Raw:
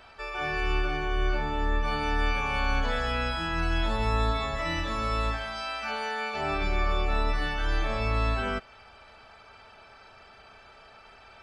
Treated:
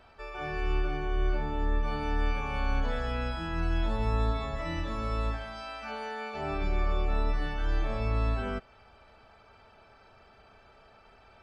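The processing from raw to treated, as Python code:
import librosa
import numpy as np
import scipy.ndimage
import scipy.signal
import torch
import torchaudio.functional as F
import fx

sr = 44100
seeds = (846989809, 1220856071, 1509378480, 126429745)

y = fx.tilt_shelf(x, sr, db=4.5, hz=860.0)
y = y * 10.0 ** (-5.0 / 20.0)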